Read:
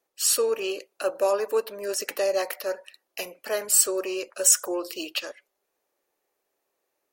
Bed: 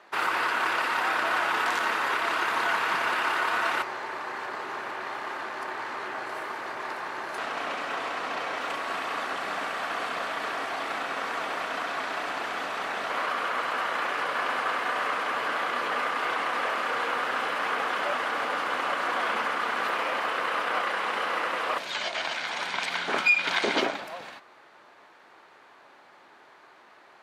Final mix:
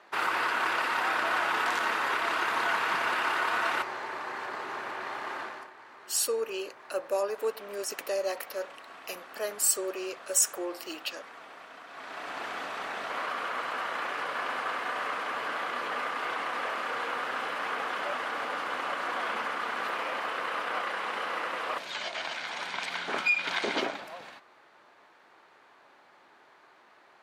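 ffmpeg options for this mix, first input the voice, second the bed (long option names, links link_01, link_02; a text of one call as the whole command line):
ffmpeg -i stem1.wav -i stem2.wav -filter_complex "[0:a]adelay=5900,volume=-6dB[link_01];[1:a]volume=10dB,afade=type=out:start_time=5.4:duration=0.3:silence=0.188365,afade=type=in:start_time=11.88:duration=0.56:silence=0.251189[link_02];[link_01][link_02]amix=inputs=2:normalize=0" out.wav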